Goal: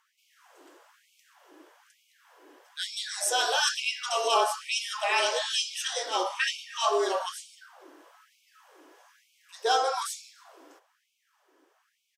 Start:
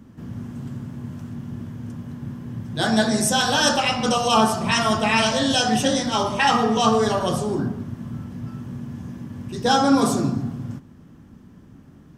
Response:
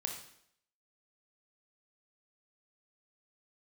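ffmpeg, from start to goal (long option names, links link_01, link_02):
-filter_complex "[0:a]asplit=2[link_01][link_02];[link_02]adelay=300,highpass=300,lowpass=3400,asoftclip=type=hard:threshold=-12.5dB,volume=-19dB[link_03];[link_01][link_03]amix=inputs=2:normalize=0,afreqshift=-34,afftfilt=real='re*gte(b*sr/1024,270*pow(2200/270,0.5+0.5*sin(2*PI*1.1*pts/sr)))':imag='im*gte(b*sr/1024,270*pow(2200/270,0.5+0.5*sin(2*PI*1.1*pts/sr)))':win_size=1024:overlap=0.75,volume=-5.5dB"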